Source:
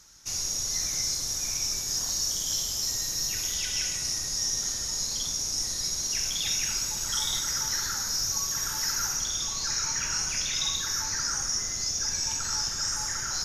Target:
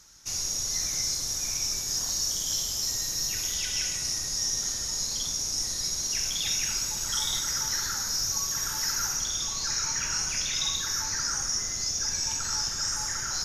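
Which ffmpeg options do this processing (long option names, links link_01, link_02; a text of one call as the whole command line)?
ffmpeg -i in.wav -af anull out.wav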